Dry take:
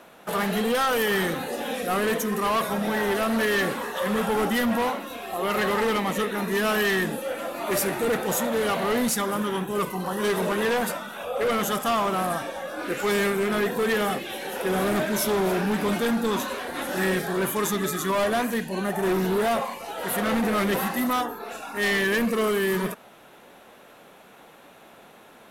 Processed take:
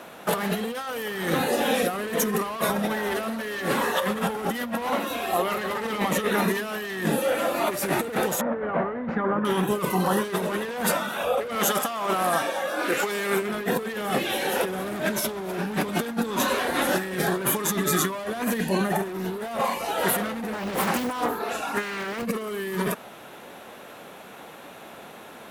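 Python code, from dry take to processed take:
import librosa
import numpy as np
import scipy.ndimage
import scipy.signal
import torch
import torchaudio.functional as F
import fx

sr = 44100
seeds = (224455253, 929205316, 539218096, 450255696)

y = fx.hum_notches(x, sr, base_hz=50, count=10, at=(2.9, 6.79))
y = fx.lowpass(y, sr, hz=1800.0, slope=24, at=(8.41, 9.45))
y = fx.highpass(y, sr, hz=370.0, slope=6, at=(11.55, 13.42))
y = fx.doppler_dist(y, sr, depth_ms=0.76, at=(20.53, 22.25))
y = scipy.signal.sosfilt(scipy.signal.butter(2, 48.0, 'highpass', fs=sr, output='sos'), y)
y = fx.over_compress(y, sr, threshold_db=-28.0, ratio=-0.5)
y = F.gain(torch.from_numpy(y), 3.0).numpy()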